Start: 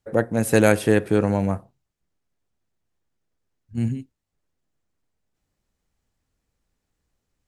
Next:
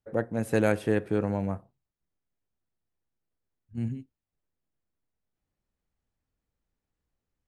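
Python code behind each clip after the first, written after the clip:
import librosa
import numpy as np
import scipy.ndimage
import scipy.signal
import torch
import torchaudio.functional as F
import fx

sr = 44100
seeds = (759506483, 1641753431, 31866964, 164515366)

y = fx.high_shelf(x, sr, hz=4200.0, db=-9.5)
y = y * librosa.db_to_amplitude(-7.5)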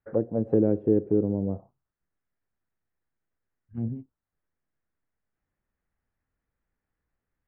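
y = fx.envelope_lowpass(x, sr, base_hz=370.0, top_hz=1800.0, q=2.1, full_db=-23.5, direction='down')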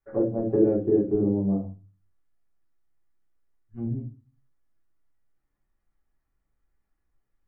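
y = fx.room_shoebox(x, sr, seeds[0], volume_m3=130.0, walls='furnished', distance_m=3.2)
y = y * librosa.db_to_amplitude(-7.0)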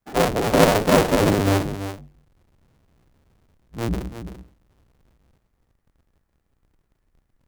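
y = fx.cycle_switch(x, sr, every=2, mode='inverted')
y = y + 10.0 ** (-10.5 / 20.0) * np.pad(y, (int(337 * sr / 1000.0), 0))[:len(y)]
y = y * librosa.db_to_amplitude(5.0)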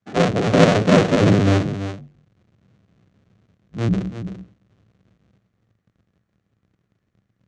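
y = fx.cabinet(x, sr, low_hz=100.0, low_slope=12, high_hz=6500.0, hz=(110.0, 190.0, 900.0, 5000.0), db=(10, 8, -7, -4))
y = y * librosa.db_to_amplitude(1.5)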